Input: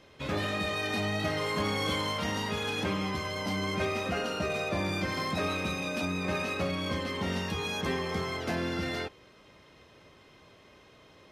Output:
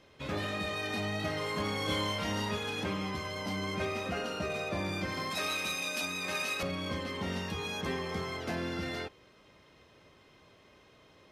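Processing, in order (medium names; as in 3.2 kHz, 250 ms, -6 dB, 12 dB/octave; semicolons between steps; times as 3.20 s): 1.85–2.57 s: doubling 29 ms -3.5 dB; 5.31–6.63 s: tilt EQ +3.5 dB/octave; trim -3.5 dB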